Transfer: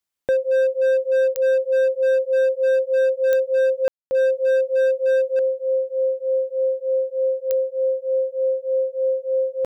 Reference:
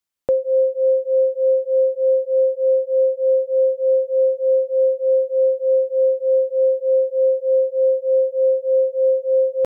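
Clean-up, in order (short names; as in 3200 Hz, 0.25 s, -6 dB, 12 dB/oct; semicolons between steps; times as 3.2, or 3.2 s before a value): clip repair -15 dBFS; de-click; room tone fill 3.88–4.11; gain 0 dB, from 5.39 s +4.5 dB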